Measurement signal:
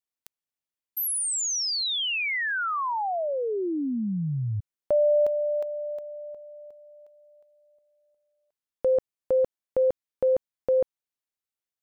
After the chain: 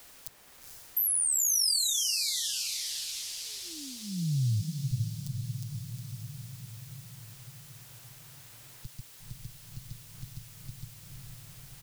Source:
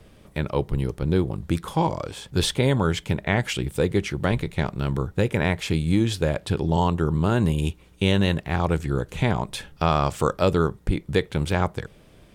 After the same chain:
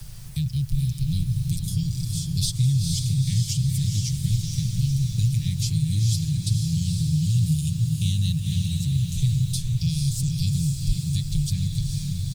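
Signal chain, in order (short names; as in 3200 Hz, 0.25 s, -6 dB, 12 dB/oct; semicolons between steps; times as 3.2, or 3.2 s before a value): rattling part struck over -22 dBFS, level -29 dBFS; elliptic band-stop 120–4800 Hz, stop band 70 dB; comb 6.6 ms, depth 83%; in parallel at +3 dB: compressor 6:1, threshold -33 dBFS; on the sum: requantised 10-bit, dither triangular; on a send: diffused feedback echo 0.48 s, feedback 53%, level -4 dB; on the sum: three-band squash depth 40%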